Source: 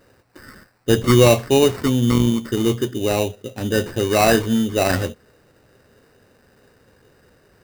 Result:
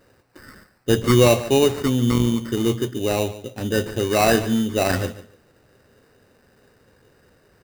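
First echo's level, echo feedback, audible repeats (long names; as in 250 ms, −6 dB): −15.5 dB, 19%, 2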